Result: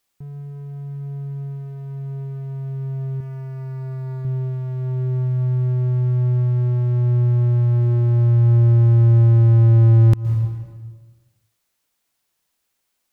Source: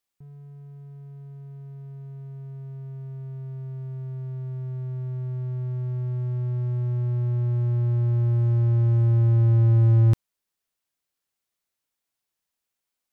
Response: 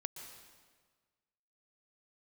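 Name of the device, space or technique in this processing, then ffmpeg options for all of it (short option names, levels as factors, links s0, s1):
ducked reverb: -filter_complex "[0:a]asplit=3[s0][s1][s2];[1:a]atrim=start_sample=2205[s3];[s1][s3]afir=irnorm=-1:irlink=0[s4];[s2]apad=whole_len=578771[s5];[s4][s5]sidechaincompress=threshold=0.0355:ratio=8:attack=16:release=190,volume=1.58[s6];[s0][s6]amix=inputs=2:normalize=0,asettb=1/sr,asplit=3[s7][s8][s9];[s7]atrim=end=3.204[s10];[s8]atrim=start=3.2:end=4.25,asetpts=PTS-STARTPTS,afade=t=in:d=0.004:c=qsin,afade=t=out:st=1.046:d=0.004:c=qsin,aecho=1:1:3.5:0.58,atrim=end_sample=46305[s11];[s9]atrim=start=4.246[s12];[s10][s11]acrossfade=d=0.004:c1=hsin:c2=qsin[s13];[s13][s12]acrossfade=d=0.004:c1=qsin:c2=hsin,volume=1.58"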